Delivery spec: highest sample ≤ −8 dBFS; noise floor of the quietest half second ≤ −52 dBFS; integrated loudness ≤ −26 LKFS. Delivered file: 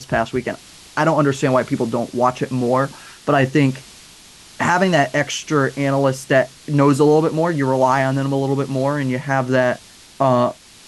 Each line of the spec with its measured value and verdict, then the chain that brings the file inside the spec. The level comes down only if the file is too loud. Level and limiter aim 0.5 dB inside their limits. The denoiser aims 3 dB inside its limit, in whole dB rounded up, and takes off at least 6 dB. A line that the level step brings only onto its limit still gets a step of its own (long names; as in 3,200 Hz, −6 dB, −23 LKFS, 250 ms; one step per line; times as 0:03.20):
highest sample −4.0 dBFS: out of spec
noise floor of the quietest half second −44 dBFS: out of spec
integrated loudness −18.5 LKFS: out of spec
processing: broadband denoise 6 dB, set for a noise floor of −44 dBFS
level −8 dB